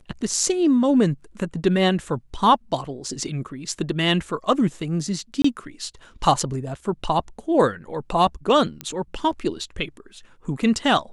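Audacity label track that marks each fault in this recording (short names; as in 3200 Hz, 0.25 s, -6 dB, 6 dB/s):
5.420000	5.440000	gap 24 ms
8.810000	8.810000	pop -13 dBFS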